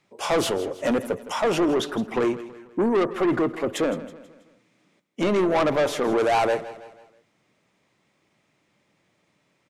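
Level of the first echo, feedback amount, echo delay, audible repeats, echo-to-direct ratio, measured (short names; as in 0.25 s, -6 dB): -15.5 dB, 45%, 0.162 s, 3, -14.5 dB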